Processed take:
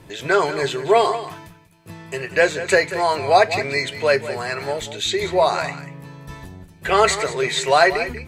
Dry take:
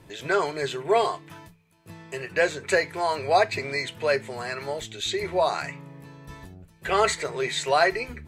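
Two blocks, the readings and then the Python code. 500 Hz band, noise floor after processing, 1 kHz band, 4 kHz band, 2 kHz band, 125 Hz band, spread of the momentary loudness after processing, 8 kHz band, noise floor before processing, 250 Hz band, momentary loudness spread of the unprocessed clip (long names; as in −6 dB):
+6.0 dB, −47 dBFS, +6.0 dB, +6.0 dB, +6.0 dB, +6.5 dB, 18 LU, +6.0 dB, −57 dBFS, +6.0 dB, 16 LU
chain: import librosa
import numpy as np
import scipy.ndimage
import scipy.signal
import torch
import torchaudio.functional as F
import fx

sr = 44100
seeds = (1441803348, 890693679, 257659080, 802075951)

y = x + 10.0 ** (-13.0 / 20.0) * np.pad(x, (int(189 * sr / 1000.0), 0))[:len(x)]
y = y * 10.0 ** (6.0 / 20.0)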